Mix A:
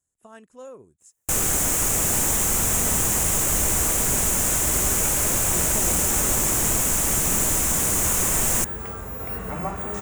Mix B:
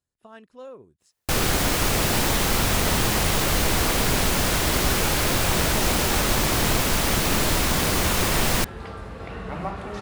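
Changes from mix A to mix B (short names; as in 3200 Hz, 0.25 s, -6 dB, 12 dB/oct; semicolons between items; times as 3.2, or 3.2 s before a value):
first sound +5.0 dB; second sound: add Chebyshev low-pass 11000 Hz, order 4; master: add resonant high shelf 5700 Hz -8.5 dB, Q 3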